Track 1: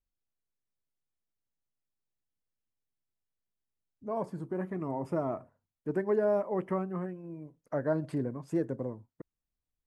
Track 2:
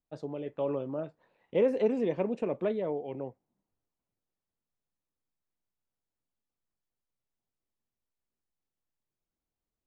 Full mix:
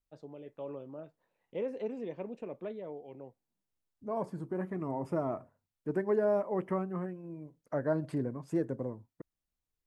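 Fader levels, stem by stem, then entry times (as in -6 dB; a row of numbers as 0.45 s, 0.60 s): -1.0 dB, -10.0 dB; 0.00 s, 0.00 s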